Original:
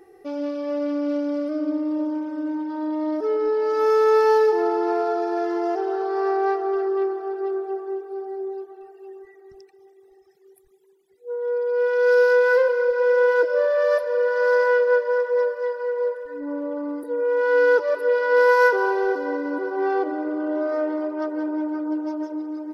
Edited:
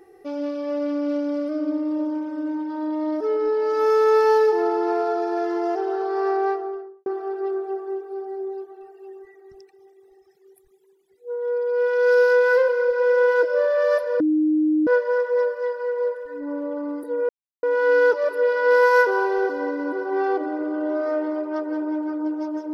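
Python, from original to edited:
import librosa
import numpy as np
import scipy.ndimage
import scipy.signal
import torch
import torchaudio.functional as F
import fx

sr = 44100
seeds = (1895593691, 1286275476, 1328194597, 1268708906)

y = fx.studio_fade_out(x, sr, start_s=6.35, length_s=0.71)
y = fx.edit(y, sr, fx.bleep(start_s=14.2, length_s=0.67, hz=308.0, db=-16.0),
    fx.insert_silence(at_s=17.29, length_s=0.34), tone=tone)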